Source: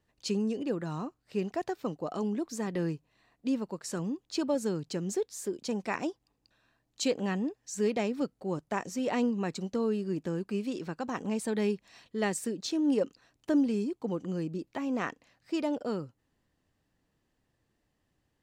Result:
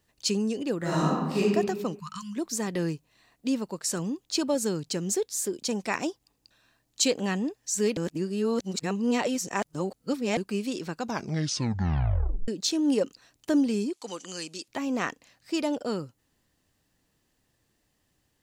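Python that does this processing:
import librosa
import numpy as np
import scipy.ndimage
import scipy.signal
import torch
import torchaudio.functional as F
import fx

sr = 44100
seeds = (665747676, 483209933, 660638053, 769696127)

y = fx.reverb_throw(x, sr, start_s=0.78, length_s=0.61, rt60_s=1.3, drr_db=-9.0)
y = fx.spec_erase(y, sr, start_s=1.99, length_s=0.37, low_hz=200.0, high_hz=910.0)
y = fx.weighting(y, sr, curve='ITU-R 468', at=(13.93, 14.68))
y = fx.edit(y, sr, fx.reverse_span(start_s=7.97, length_s=2.4),
    fx.tape_stop(start_s=10.97, length_s=1.51), tone=tone)
y = fx.high_shelf(y, sr, hz=3500.0, db=10.5)
y = F.gain(torch.from_numpy(y), 2.5).numpy()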